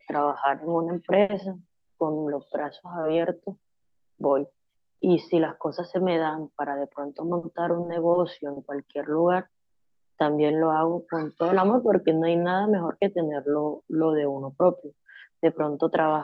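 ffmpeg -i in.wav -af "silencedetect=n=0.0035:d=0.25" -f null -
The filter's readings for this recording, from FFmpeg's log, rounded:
silence_start: 1.61
silence_end: 2.00 | silence_duration: 0.40
silence_start: 3.55
silence_end: 4.20 | silence_duration: 0.65
silence_start: 4.49
silence_end: 5.02 | silence_duration: 0.53
silence_start: 9.46
silence_end: 10.19 | silence_duration: 0.73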